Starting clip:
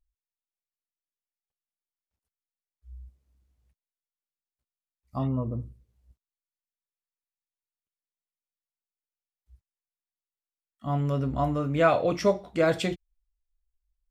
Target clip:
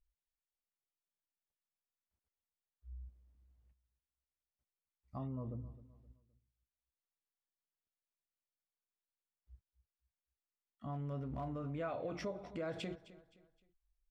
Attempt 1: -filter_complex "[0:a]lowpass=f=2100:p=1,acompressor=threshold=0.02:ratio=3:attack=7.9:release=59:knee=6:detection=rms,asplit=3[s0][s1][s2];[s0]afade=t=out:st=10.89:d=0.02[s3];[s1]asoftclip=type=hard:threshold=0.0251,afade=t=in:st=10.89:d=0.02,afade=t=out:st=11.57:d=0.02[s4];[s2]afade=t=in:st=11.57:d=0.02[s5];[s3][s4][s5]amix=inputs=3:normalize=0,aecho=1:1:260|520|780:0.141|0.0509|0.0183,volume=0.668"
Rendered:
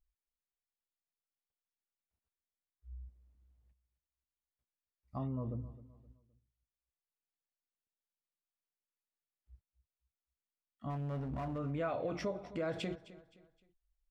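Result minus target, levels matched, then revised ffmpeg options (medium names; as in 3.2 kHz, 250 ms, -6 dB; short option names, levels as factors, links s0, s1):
compression: peak gain reduction -4 dB
-filter_complex "[0:a]lowpass=f=2100:p=1,acompressor=threshold=0.01:ratio=3:attack=7.9:release=59:knee=6:detection=rms,asplit=3[s0][s1][s2];[s0]afade=t=out:st=10.89:d=0.02[s3];[s1]asoftclip=type=hard:threshold=0.0251,afade=t=in:st=10.89:d=0.02,afade=t=out:st=11.57:d=0.02[s4];[s2]afade=t=in:st=11.57:d=0.02[s5];[s3][s4][s5]amix=inputs=3:normalize=0,aecho=1:1:260|520|780:0.141|0.0509|0.0183,volume=0.668"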